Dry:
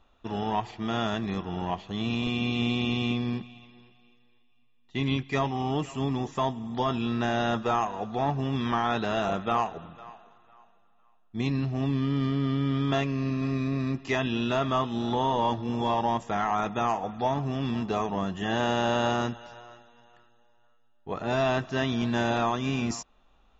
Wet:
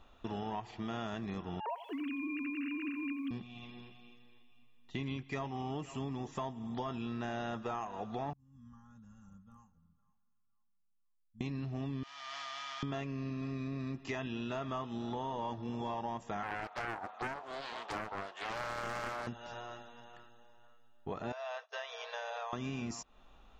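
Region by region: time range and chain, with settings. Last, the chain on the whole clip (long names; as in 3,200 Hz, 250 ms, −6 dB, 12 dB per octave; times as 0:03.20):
0:01.60–0:03.31: three sine waves on the formant tracks + feedback echo at a low word length 87 ms, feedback 35%, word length 9 bits, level −14 dB
0:08.33–0:11.41: inverse Chebyshev band-stop filter 330–4,400 Hz + three-way crossover with the lows and the highs turned down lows −20 dB, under 520 Hz, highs −19 dB, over 2,500 Hz + comb filter 3.6 ms
0:12.03–0:12.83: linear delta modulator 32 kbit/s, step −36.5 dBFS + elliptic high-pass filter 690 Hz + output level in coarse steps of 9 dB
0:16.43–0:19.27: high-pass filter 600 Hz 24 dB per octave + high-shelf EQ 3,200 Hz −9 dB + highs frequency-modulated by the lows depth 0.65 ms
0:21.32–0:22.53: downward expander −27 dBFS + downward compressor 10 to 1, threshold −31 dBFS + linear-phase brick-wall band-pass 430–6,700 Hz
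whole clip: dynamic equaliser 3,600 Hz, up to −4 dB, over −49 dBFS, Q 3.9; downward compressor 4 to 1, threshold −42 dBFS; level +3 dB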